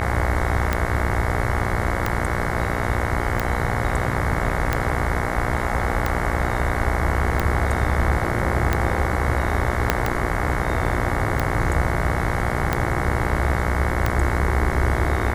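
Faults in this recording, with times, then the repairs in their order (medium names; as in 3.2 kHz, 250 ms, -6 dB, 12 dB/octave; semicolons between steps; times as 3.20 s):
buzz 60 Hz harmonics 37 -26 dBFS
tick 45 rpm -7 dBFS
9.90 s: pop -2 dBFS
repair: de-click; de-hum 60 Hz, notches 37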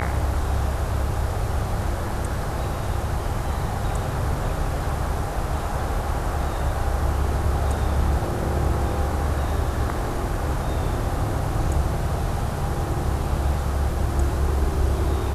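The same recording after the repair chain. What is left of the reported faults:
9.90 s: pop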